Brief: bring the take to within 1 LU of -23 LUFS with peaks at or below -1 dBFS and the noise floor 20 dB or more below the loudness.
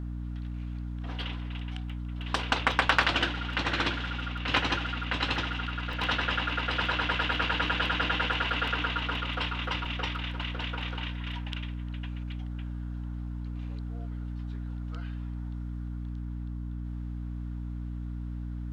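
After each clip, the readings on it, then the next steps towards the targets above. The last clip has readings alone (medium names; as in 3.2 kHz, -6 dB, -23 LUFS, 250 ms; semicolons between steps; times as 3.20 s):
dropouts 2; longest dropout 3.0 ms; hum 60 Hz; highest harmonic 300 Hz; hum level -33 dBFS; loudness -31.5 LUFS; peak level -10.5 dBFS; loudness target -23.0 LUFS
-> interpolate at 5.93/9.85 s, 3 ms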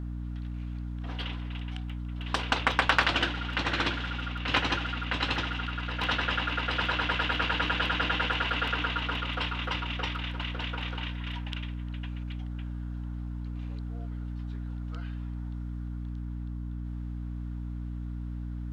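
dropouts 0; hum 60 Hz; highest harmonic 300 Hz; hum level -33 dBFS
-> de-hum 60 Hz, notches 5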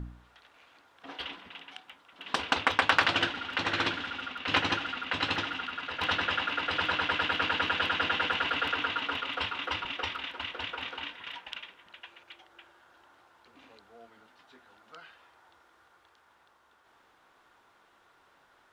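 hum not found; loudness -30.0 LUFS; peak level -11.0 dBFS; loudness target -23.0 LUFS
-> trim +7 dB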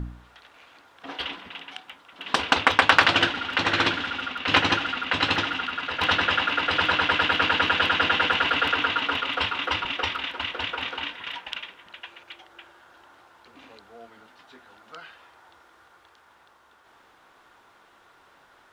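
loudness -23.0 LUFS; peak level -4.0 dBFS; noise floor -57 dBFS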